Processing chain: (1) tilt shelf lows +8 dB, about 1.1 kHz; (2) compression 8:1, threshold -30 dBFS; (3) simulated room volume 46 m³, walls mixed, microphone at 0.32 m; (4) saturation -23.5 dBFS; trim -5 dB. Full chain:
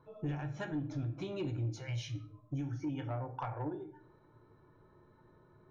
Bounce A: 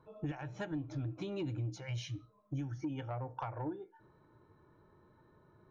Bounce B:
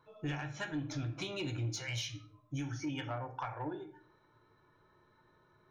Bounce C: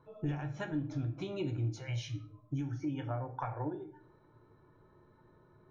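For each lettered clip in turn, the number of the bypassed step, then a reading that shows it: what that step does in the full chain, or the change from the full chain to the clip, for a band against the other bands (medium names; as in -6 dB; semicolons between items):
3, loudness change -1.5 LU; 1, 4 kHz band +10.0 dB; 4, distortion -20 dB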